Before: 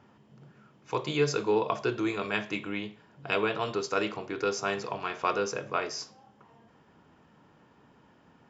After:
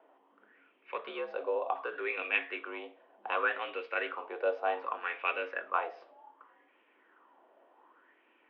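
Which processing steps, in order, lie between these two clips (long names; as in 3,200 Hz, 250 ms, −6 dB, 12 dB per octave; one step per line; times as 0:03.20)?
0:00.96–0:01.93: downward compressor 3 to 1, threshold −28 dBFS, peak gain reduction 6.5 dB
single-sideband voice off tune +66 Hz 240–3,200 Hz
auto-filter bell 0.66 Hz 640–2,500 Hz +15 dB
level −8.5 dB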